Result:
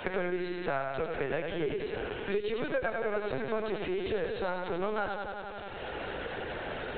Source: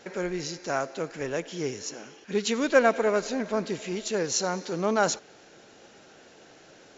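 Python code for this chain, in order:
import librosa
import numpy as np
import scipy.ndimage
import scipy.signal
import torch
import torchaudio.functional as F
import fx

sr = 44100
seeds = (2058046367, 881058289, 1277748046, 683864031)

y = fx.highpass(x, sr, hz=290.0, slope=6)
y = fx.rider(y, sr, range_db=4, speed_s=0.5)
y = fx.echo_feedback(y, sr, ms=90, feedback_pct=60, wet_db=-5.5)
y = fx.lpc_vocoder(y, sr, seeds[0], excitation='pitch_kept', order=16)
y = fx.band_squash(y, sr, depth_pct=100)
y = F.gain(torch.from_numpy(y), -5.0).numpy()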